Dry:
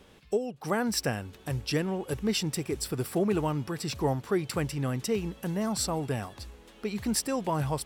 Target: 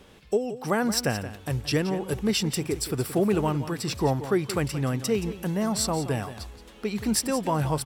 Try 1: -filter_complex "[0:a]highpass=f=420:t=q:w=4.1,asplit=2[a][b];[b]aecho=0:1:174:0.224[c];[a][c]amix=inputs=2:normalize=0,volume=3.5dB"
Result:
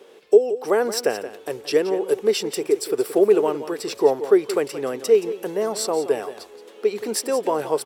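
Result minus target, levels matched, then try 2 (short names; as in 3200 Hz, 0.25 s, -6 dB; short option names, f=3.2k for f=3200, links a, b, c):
500 Hz band +5.0 dB
-filter_complex "[0:a]asplit=2[a][b];[b]aecho=0:1:174:0.224[c];[a][c]amix=inputs=2:normalize=0,volume=3.5dB"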